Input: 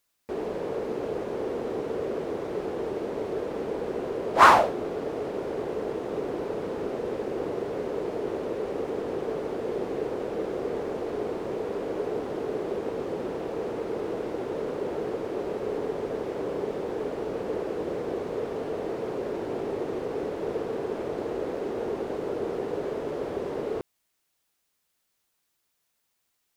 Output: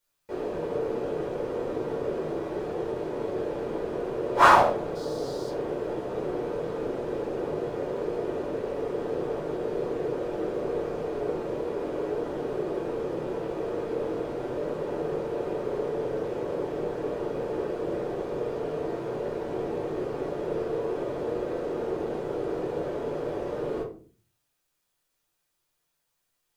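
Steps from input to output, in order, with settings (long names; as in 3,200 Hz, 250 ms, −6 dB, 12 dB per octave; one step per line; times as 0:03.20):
0:04.95–0:05.49: high shelf with overshoot 3,400 Hz +10 dB, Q 3
rectangular room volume 270 cubic metres, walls furnished, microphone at 4.7 metres
level −9 dB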